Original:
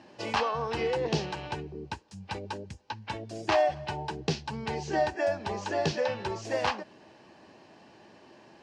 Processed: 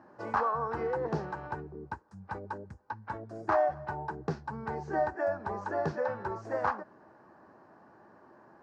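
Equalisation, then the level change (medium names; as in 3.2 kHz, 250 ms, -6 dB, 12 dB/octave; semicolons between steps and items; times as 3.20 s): resonant high shelf 2 kHz -13 dB, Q 3; -4.0 dB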